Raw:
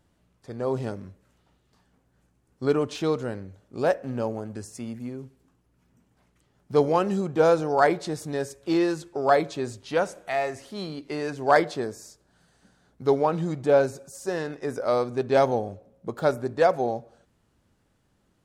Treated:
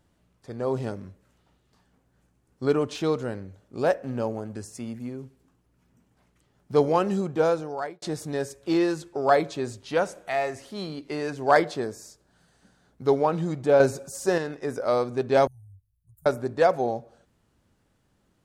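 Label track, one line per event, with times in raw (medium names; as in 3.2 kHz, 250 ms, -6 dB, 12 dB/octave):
7.220000	8.020000	fade out
13.800000	14.380000	gain +5.5 dB
15.470000	16.260000	inverse Chebyshev band-stop 220–4800 Hz, stop band 50 dB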